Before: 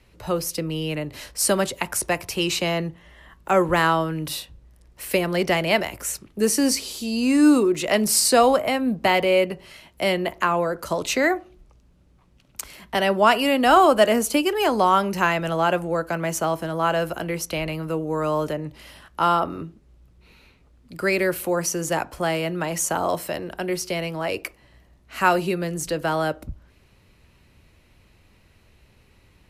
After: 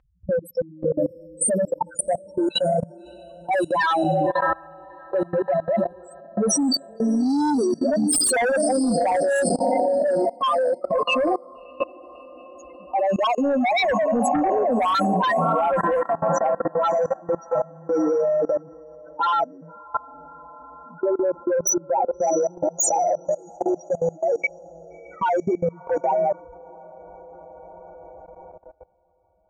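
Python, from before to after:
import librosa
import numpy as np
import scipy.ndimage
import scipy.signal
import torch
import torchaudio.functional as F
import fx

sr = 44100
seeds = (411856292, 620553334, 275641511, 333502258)

p1 = fx.wiener(x, sr, points=15)
p2 = fx.spec_topn(p1, sr, count=2)
p3 = fx.tilt_eq(p2, sr, slope=4.5)
p4 = p3 + 0.54 * np.pad(p3, (int(3.9 * sr / 1000.0), 0))[:len(p3)]
p5 = p4 + fx.echo_diffused(p4, sr, ms=638, feedback_pct=49, wet_db=-13, dry=0)
p6 = fx.env_lowpass(p5, sr, base_hz=1500.0, full_db=-18.0)
p7 = fx.fold_sine(p6, sr, drive_db=19, ceiling_db=-2.5)
p8 = p6 + (p7 * 10.0 ** (-6.0 / 20.0))
p9 = fx.dynamic_eq(p8, sr, hz=360.0, q=1.2, threshold_db=-21.0, ratio=4.0, max_db=-3)
p10 = fx.level_steps(p9, sr, step_db=23)
y = p10 * 10.0 ** (3.0 / 20.0)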